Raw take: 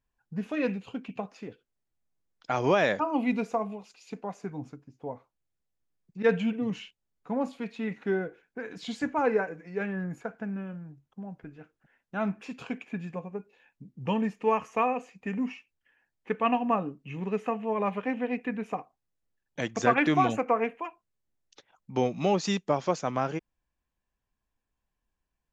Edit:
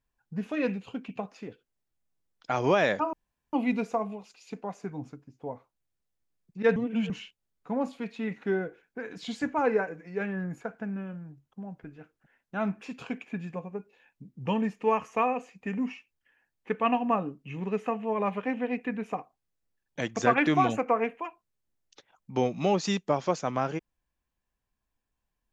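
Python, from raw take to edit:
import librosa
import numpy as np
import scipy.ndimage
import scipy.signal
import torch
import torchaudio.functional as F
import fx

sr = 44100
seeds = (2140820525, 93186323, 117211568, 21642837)

y = fx.edit(x, sr, fx.insert_room_tone(at_s=3.13, length_s=0.4),
    fx.reverse_span(start_s=6.36, length_s=0.34), tone=tone)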